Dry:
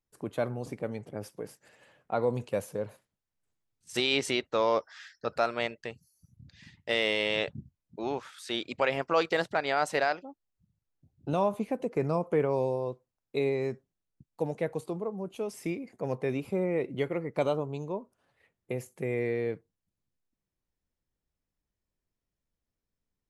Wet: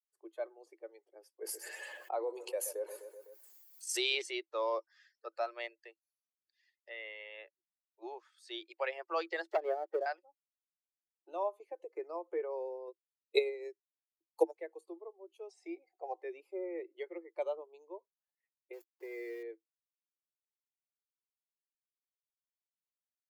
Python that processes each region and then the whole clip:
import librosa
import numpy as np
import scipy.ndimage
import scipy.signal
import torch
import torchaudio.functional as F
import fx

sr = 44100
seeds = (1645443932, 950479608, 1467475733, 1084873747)

y = fx.chain(x, sr, fx.high_shelf(hz=8200.0, db=8.5),
    fx.echo_feedback(ms=126, feedback_pct=42, wet_db=-17),
    fx.env_flatten(amount_pct=70), at=(1.41, 4.22))
y = fx.chain(y, sr, fx.highpass(hz=780.0, slope=6),
    fx.air_absorb(metres=470.0), at=(6.89, 8.02))
y = fx.chain(y, sr, fx.env_lowpass_down(base_hz=340.0, full_db=-24.0),
    fx.leveller(passes=3), at=(9.47, 10.06))
y = fx.chain(y, sr, fx.high_shelf(hz=5100.0, db=11.0),
    fx.transient(attack_db=11, sustain_db=-10), at=(12.87, 14.57))
y = fx.chain(y, sr, fx.lowpass(hz=8400.0, slope=24),
    fx.small_body(hz=(750.0, 3900.0), ring_ms=50, db=17), at=(15.49, 16.22))
y = fx.chain(y, sr, fx.highpass(hz=57.0, slope=24),
    fx.low_shelf(hz=140.0, db=4.0),
    fx.sample_gate(floor_db=-38.5), at=(18.73, 19.43))
y = fx.bin_expand(y, sr, power=1.5)
y = scipy.signal.sosfilt(scipy.signal.cheby1(8, 1.0, 330.0, 'highpass', fs=sr, output='sos'), y)
y = fx.notch(y, sr, hz=1400.0, q=11.0)
y = F.gain(torch.from_numpy(y), -5.0).numpy()